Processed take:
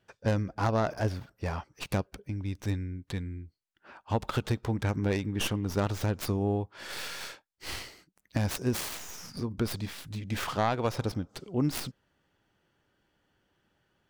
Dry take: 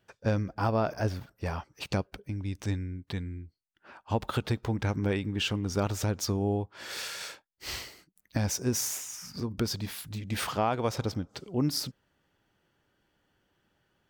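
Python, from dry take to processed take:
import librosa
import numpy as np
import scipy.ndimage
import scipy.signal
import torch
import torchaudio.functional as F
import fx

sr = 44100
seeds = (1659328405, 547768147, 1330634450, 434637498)

y = fx.tracing_dist(x, sr, depth_ms=0.31)
y = fx.high_shelf(y, sr, hz=12000.0, db=-7.5)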